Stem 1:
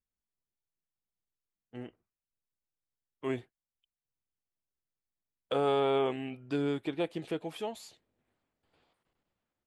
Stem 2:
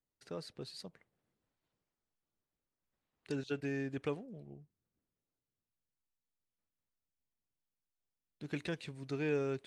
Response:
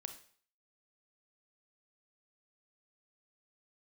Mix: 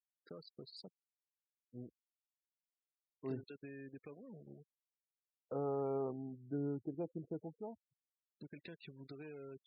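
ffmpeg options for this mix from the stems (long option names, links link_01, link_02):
-filter_complex "[0:a]lowpass=1500,aemphasis=mode=reproduction:type=riaa,volume=-13dB[link_01];[1:a]alimiter=level_in=8dB:limit=-24dB:level=0:latency=1:release=157,volume=-8dB,acompressor=threshold=-48dB:ratio=4,acrusher=bits=8:mix=0:aa=0.5,volume=-1dB[link_02];[link_01][link_02]amix=inputs=2:normalize=0,afftfilt=real='re*gte(hypot(re,im),0.00282)':imag='im*gte(hypot(re,im),0.00282)':win_size=1024:overlap=0.75,highpass=120"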